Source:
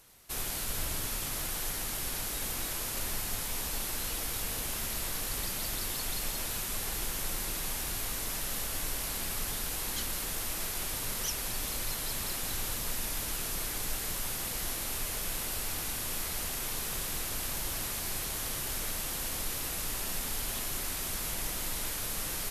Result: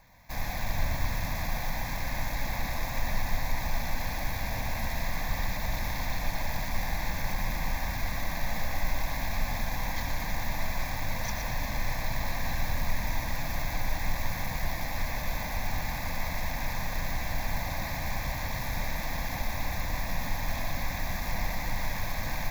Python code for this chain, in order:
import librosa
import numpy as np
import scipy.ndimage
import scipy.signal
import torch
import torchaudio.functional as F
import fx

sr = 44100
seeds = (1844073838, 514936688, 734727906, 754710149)

y = scipy.ndimage.median_filter(x, 9, mode='constant')
y = fx.fixed_phaser(y, sr, hz=2000.0, stages=8)
y = fx.echo_split(y, sr, split_hz=370.0, low_ms=196, high_ms=118, feedback_pct=52, wet_db=-5.5)
y = y * librosa.db_to_amplitude(8.5)